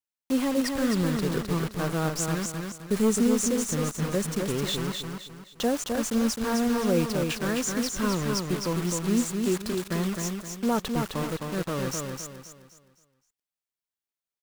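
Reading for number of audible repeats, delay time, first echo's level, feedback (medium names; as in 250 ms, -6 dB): 4, 260 ms, -4.5 dB, 36%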